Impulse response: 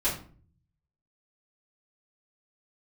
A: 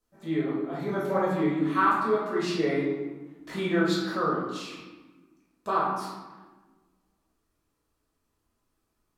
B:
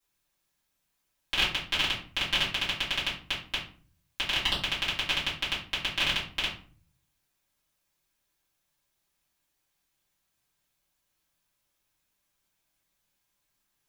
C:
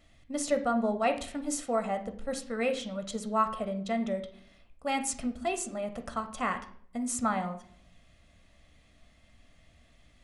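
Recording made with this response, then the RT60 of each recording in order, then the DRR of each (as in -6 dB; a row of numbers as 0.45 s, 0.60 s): B; 1.3 s, 0.45 s, 0.60 s; -8.0 dB, -11.0 dB, 7.0 dB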